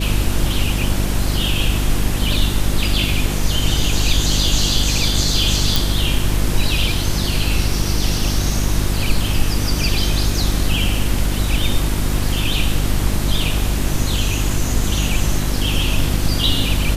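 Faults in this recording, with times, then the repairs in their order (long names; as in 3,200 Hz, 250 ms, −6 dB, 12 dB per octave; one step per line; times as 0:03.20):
mains hum 50 Hz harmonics 7 −21 dBFS
0:05.76: click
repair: click removal
hum removal 50 Hz, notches 7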